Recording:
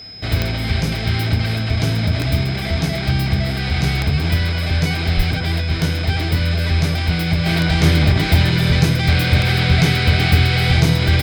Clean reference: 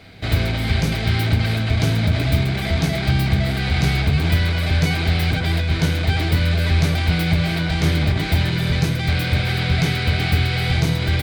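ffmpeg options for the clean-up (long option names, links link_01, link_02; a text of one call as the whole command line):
ffmpeg -i in.wav -filter_complex "[0:a]adeclick=threshold=4,bandreject=frequency=5100:width=30,asplit=3[link_01][link_02][link_03];[link_01]afade=type=out:start_time=5.16:duration=0.02[link_04];[link_02]highpass=frequency=140:width=0.5412,highpass=frequency=140:width=1.3066,afade=type=in:start_time=5.16:duration=0.02,afade=type=out:start_time=5.28:duration=0.02[link_05];[link_03]afade=type=in:start_time=5.28:duration=0.02[link_06];[link_04][link_05][link_06]amix=inputs=3:normalize=0,asetnsamples=nb_out_samples=441:pad=0,asendcmd='7.46 volume volume -4.5dB',volume=0dB" out.wav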